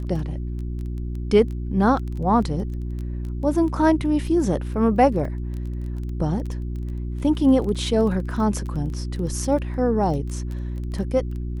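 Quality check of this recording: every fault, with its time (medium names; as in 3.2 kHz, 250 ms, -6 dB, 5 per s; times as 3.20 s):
crackle 13 per s -30 dBFS
hum 60 Hz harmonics 6 -28 dBFS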